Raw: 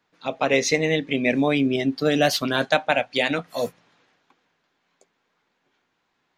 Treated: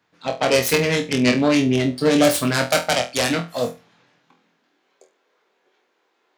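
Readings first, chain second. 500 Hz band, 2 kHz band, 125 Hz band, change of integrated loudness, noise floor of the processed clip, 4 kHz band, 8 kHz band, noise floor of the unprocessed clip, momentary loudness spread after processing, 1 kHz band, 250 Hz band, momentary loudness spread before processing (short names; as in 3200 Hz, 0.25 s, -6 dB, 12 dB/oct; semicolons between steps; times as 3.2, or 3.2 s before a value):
+2.5 dB, +1.0 dB, +5.5 dB, +3.0 dB, -68 dBFS, +3.5 dB, +6.5 dB, -73 dBFS, 8 LU, +1.5 dB, +4.0 dB, 8 LU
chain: self-modulated delay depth 0.33 ms; high-pass sweep 76 Hz -> 400 Hz, 3.87–4.94; flutter echo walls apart 4.1 m, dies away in 0.26 s; gain +2 dB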